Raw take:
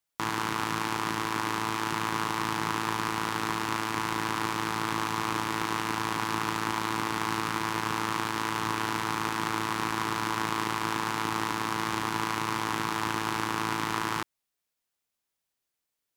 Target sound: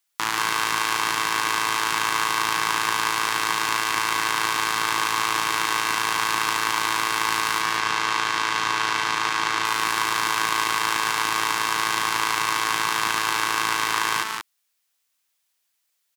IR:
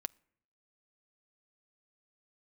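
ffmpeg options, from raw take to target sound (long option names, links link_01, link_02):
-filter_complex "[0:a]asettb=1/sr,asplit=3[link_01][link_02][link_03];[link_01]atrim=end=7.614[link_04];[link_02]atrim=start=7.61:end=9.65,asetpts=PTS-STARTPTS,afade=type=in:duration=0.004:curve=qsin,afade=type=out:start_time=2.036:duration=0.004:curve=qsin,acrossover=split=7500[link_05][link_06];[link_06]acompressor=threshold=-53dB:ratio=4:attack=1:release=60[link_07];[link_05][link_07]amix=inputs=2:normalize=0[link_08];[link_03]atrim=start=9.646[link_09];[link_04][link_08]acrossfade=duration=0.004:curve1=hsin:curve2=qsin[link_10];[link_10][link_09]acrossfade=duration=0.004:curve1=qsin:curve2=hsin,tiltshelf=frequency=660:gain=-8.5,aecho=1:1:142.9|183.7:0.355|0.501,volume=1.5dB"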